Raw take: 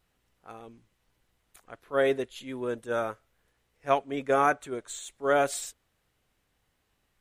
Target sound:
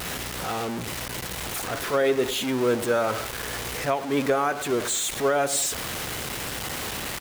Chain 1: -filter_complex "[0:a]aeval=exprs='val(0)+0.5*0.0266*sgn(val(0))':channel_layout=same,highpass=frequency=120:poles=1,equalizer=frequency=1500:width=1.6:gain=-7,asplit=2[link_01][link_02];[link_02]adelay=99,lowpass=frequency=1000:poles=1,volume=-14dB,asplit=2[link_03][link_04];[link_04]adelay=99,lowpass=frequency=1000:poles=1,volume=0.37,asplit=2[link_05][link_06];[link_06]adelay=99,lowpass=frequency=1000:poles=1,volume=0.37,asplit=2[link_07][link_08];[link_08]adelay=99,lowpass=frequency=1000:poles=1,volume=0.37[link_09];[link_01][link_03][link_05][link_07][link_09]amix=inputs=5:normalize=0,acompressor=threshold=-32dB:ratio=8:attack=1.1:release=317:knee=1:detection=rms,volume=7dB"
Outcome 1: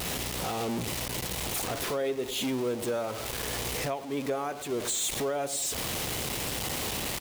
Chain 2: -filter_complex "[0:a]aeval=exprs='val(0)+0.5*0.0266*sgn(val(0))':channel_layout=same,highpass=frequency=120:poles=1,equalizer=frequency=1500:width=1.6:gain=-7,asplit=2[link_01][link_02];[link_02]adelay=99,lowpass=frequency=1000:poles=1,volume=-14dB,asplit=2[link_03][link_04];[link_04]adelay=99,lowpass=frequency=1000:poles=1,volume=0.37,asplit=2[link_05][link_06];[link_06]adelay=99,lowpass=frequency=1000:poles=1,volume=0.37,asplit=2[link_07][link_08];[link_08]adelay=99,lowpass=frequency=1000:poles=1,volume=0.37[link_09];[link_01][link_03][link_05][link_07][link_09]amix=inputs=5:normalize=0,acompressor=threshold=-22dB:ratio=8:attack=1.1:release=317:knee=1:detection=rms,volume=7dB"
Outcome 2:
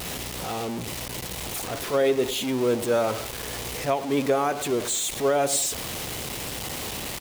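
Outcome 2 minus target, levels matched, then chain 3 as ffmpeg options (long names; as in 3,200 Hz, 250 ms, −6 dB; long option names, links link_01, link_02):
2,000 Hz band −4.0 dB
-filter_complex "[0:a]aeval=exprs='val(0)+0.5*0.0266*sgn(val(0))':channel_layout=same,highpass=frequency=120:poles=1,asplit=2[link_01][link_02];[link_02]adelay=99,lowpass=frequency=1000:poles=1,volume=-14dB,asplit=2[link_03][link_04];[link_04]adelay=99,lowpass=frequency=1000:poles=1,volume=0.37,asplit=2[link_05][link_06];[link_06]adelay=99,lowpass=frequency=1000:poles=1,volume=0.37,asplit=2[link_07][link_08];[link_08]adelay=99,lowpass=frequency=1000:poles=1,volume=0.37[link_09];[link_01][link_03][link_05][link_07][link_09]amix=inputs=5:normalize=0,acompressor=threshold=-22dB:ratio=8:attack=1.1:release=317:knee=1:detection=rms,volume=7dB"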